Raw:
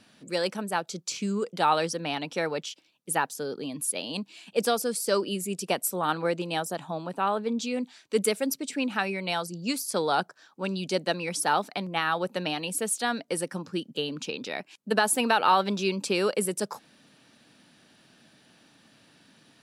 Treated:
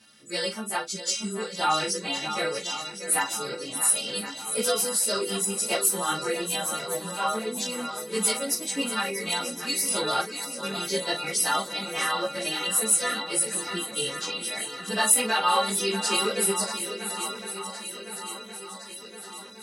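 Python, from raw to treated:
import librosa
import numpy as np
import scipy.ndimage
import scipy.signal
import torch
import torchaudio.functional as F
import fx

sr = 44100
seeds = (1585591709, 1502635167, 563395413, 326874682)

p1 = fx.freq_snap(x, sr, grid_st=2)
p2 = fx.doubler(p1, sr, ms=38.0, db=-9.0)
p3 = p2 + fx.echo_swing(p2, sr, ms=1063, ratio=1.5, feedback_pct=58, wet_db=-10.5, dry=0)
y = fx.ensemble(p3, sr)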